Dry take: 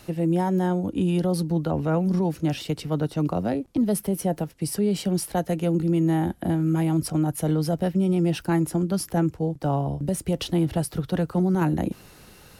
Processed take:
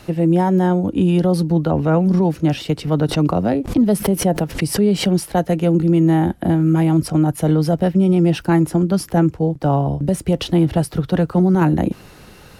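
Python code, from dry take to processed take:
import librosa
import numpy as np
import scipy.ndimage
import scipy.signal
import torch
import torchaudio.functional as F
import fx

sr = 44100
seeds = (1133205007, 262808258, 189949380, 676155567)

y = fx.high_shelf(x, sr, hz=5500.0, db=-8.0)
y = fx.pre_swell(y, sr, db_per_s=140.0, at=(2.87, 5.26))
y = y * 10.0 ** (7.5 / 20.0)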